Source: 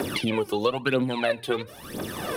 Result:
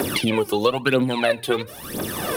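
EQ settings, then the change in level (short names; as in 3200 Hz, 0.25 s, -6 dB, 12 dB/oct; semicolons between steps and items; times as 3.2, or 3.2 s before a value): high shelf 9200 Hz +9 dB; +4.5 dB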